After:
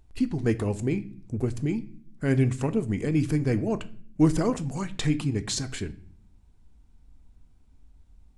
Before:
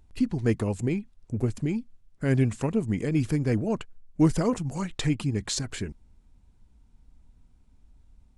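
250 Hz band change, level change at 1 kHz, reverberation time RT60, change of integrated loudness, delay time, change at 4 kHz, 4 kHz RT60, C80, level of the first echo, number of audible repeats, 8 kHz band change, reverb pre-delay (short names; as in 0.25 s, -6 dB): +0.5 dB, 0.0 dB, 0.50 s, +0.5 dB, none, +0.5 dB, 0.40 s, 22.0 dB, none, none, 0.0 dB, 3 ms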